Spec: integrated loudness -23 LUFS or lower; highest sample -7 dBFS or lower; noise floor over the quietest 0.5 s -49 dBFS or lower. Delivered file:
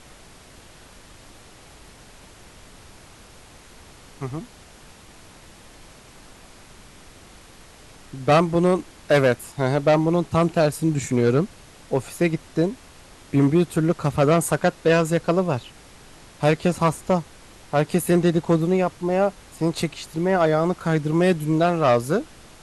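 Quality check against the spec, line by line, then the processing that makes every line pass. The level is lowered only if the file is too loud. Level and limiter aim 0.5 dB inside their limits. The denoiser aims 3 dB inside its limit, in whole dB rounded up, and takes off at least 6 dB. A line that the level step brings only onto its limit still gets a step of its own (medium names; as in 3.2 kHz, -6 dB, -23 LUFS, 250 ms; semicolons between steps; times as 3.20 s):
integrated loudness -21.5 LUFS: fail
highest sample -6.0 dBFS: fail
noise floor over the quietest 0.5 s -47 dBFS: fail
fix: noise reduction 6 dB, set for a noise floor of -47 dBFS; trim -2 dB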